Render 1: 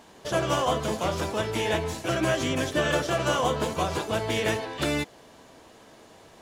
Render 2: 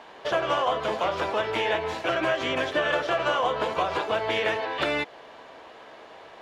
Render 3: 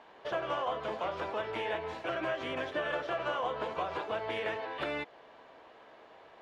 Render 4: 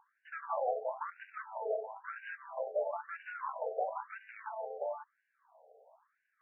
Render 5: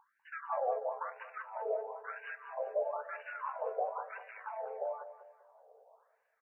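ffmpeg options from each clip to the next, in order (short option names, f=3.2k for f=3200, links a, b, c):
-filter_complex "[0:a]acrossover=split=420 3800:gain=0.178 1 0.0794[a][b][c];[a][b][c]amix=inputs=3:normalize=0,acompressor=threshold=-32dB:ratio=2.5,volume=8dB"
-filter_complex "[0:a]highshelf=f=4.8k:g=-9.5,acrossover=split=3300[a][b];[b]asoftclip=type=tanh:threshold=-37dB[c];[a][c]amix=inputs=2:normalize=0,volume=-8.5dB"
-af "adynamicsmooth=sensitivity=1.5:basefreq=520,afftfilt=real='re*between(b*sr/1024,550*pow(2100/550,0.5+0.5*sin(2*PI*1*pts/sr))/1.41,550*pow(2100/550,0.5+0.5*sin(2*PI*1*pts/sr))*1.41)':imag='im*between(b*sr/1024,550*pow(2100/550,0.5+0.5*sin(2*PI*1*pts/sr))/1.41,550*pow(2100/550,0.5+0.5*sin(2*PI*1*pts/sr))*1.41)':win_size=1024:overlap=0.75,volume=4dB"
-af "aecho=1:1:196|392|588|784:0.237|0.0949|0.0379|0.0152"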